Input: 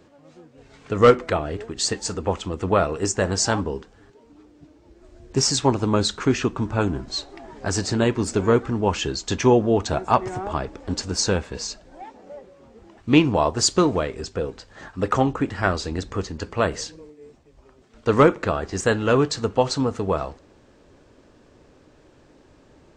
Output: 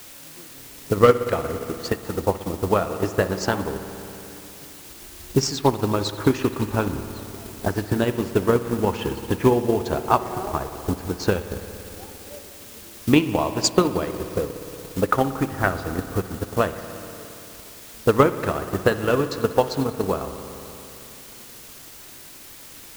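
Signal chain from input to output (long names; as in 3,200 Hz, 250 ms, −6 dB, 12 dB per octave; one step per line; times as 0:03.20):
low-pass that shuts in the quiet parts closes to 370 Hz, open at −14.5 dBFS
in parallel at +1 dB: downward compressor, threshold −27 dBFS, peak gain reduction 17.5 dB
on the sum: spring reverb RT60 3.1 s, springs 58 ms, chirp 40 ms, DRR 5.5 dB
bit-depth reduction 6 bits, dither triangular
transient designer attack +8 dB, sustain −4 dB
level −7 dB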